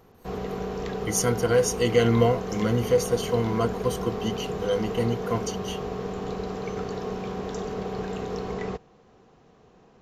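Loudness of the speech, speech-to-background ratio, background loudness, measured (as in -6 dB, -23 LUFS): -25.5 LUFS, 7.0 dB, -32.5 LUFS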